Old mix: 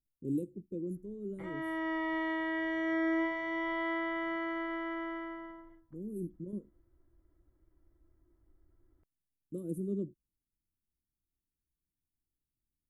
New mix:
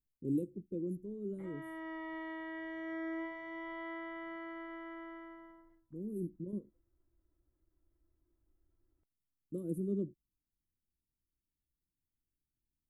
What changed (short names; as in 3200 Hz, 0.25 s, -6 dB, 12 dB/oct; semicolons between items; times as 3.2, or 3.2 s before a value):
background -9.0 dB; master: add bell 6200 Hz -5 dB 1.7 oct